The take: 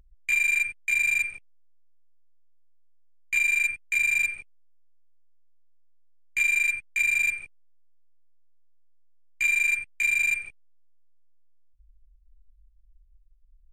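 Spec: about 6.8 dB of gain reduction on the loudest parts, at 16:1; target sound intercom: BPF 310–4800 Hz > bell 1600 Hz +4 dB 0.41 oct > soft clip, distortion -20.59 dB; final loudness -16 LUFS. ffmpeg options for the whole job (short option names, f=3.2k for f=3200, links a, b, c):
-af "acompressor=threshold=-27dB:ratio=16,highpass=310,lowpass=4.8k,equalizer=f=1.6k:t=o:w=0.41:g=4,asoftclip=threshold=-24dB,volume=14.5dB"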